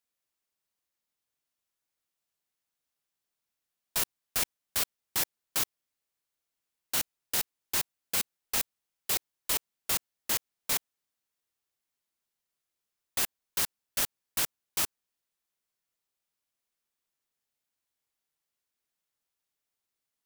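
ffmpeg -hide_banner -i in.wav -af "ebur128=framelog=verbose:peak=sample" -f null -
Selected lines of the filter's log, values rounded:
Integrated loudness:
  I:         -31.0 LUFS
  Threshold: -41.0 LUFS
Loudness range:
  LRA:         5.5 LU
  Threshold: -53.2 LUFS
  LRA low:   -36.6 LUFS
  LRA high:  -31.1 LUFS
Sample peak:
  Peak:      -13.2 dBFS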